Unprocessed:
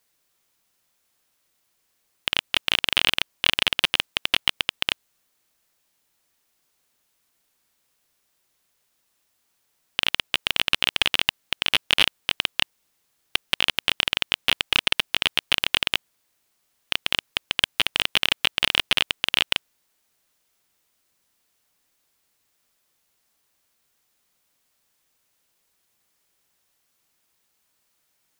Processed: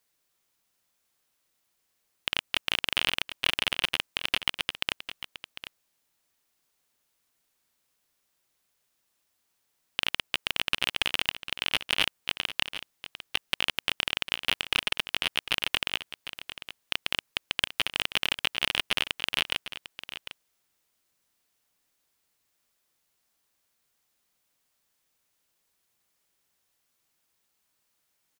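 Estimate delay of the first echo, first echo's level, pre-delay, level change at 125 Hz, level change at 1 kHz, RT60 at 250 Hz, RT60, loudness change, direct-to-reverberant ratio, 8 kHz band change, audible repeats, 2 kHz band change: 750 ms, −12.5 dB, no reverb audible, −4.5 dB, −5.0 dB, no reverb audible, no reverb audible, −6.0 dB, no reverb audible, −5.0 dB, 1, −5.0 dB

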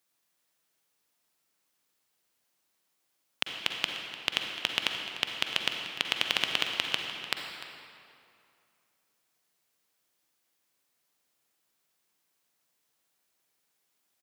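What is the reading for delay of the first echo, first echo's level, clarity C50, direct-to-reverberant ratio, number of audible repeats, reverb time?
298 ms, −15.5 dB, 3.0 dB, 2.5 dB, 1, 2.4 s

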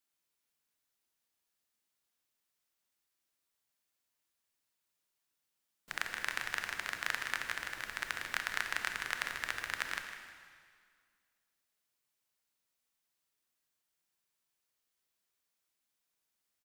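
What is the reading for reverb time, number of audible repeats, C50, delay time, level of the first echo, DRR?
1.9 s, 1, 5.0 dB, 154 ms, −12.5 dB, 4.5 dB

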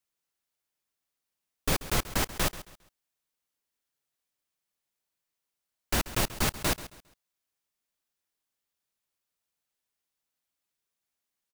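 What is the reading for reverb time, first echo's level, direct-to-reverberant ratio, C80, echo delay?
no reverb audible, −15.5 dB, no reverb audible, no reverb audible, 135 ms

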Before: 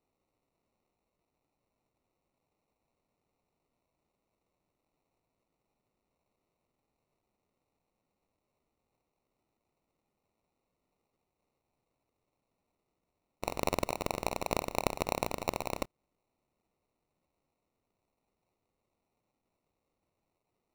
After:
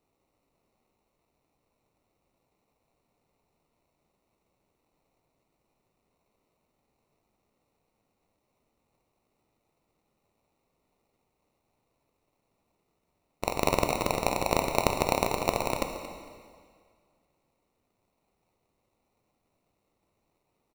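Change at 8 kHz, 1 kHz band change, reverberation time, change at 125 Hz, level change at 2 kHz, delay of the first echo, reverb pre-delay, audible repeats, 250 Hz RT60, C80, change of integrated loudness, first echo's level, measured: +6.5 dB, +7.0 dB, 2.0 s, +6.5 dB, +6.5 dB, 227 ms, 5 ms, 1, 1.9 s, 7.0 dB, +6.5 dB, −15.0 dB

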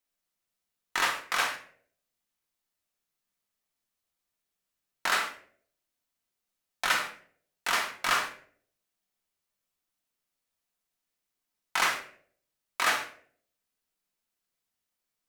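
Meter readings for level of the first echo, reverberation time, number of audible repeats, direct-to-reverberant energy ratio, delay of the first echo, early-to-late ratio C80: no echo audible, 0.55 s, no echo audible, 2.0 dB, no echo audible, 13.0 dB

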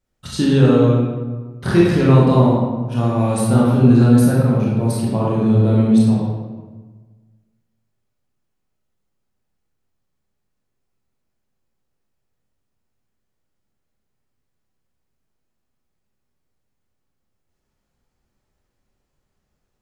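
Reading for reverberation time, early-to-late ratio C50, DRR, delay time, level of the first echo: 1.4 s, −1.5 dB, −6.0 dB, no echo audible, no echo audible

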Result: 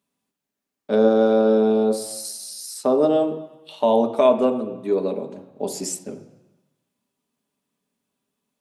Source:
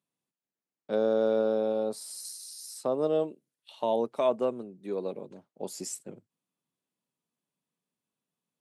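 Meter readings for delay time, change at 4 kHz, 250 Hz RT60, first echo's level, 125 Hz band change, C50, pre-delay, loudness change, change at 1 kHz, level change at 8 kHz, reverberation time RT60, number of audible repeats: no echo audible, +9.0 dB, 1.0 s, no echo audible, +10.5 dB, 11.0 dB, 3 ms, +10.0 dB, +10.0 dB, +8.5 dB, 1.1 s, no echo audible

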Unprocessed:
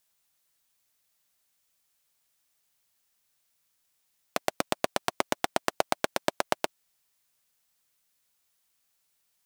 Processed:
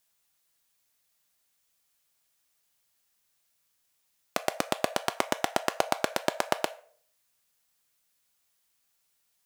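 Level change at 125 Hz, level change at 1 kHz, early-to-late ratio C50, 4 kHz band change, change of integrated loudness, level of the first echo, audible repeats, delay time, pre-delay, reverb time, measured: 0.0 dB, +0.5 dB, 17.0 dB, +0.5 dB, +0.5 dB, no echo audible, no echo audible, no echo audible, 4 ms, 0.55 s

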